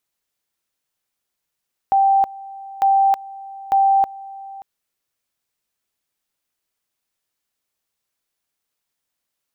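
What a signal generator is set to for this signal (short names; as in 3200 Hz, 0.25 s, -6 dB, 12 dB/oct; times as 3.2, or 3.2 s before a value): two-level tone 783 Hz -11.5 dBFS, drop 20.5 dB, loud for 0.32 s, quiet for 0.58 s, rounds 3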